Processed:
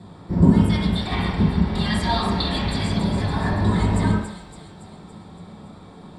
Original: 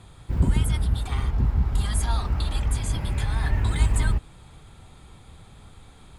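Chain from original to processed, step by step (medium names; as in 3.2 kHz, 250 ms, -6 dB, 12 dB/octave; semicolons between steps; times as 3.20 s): 0.69–2.93 s: high-order bell 2.8 kHz +9.5 dB; feedback echo behind a high-pass 282 ms, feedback 58%, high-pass 3.9 kHz, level -6 dB; reverberation RT60 0.75 s, pre-delay 3 ms, DRR -6.5 dB; trim -8.5 dB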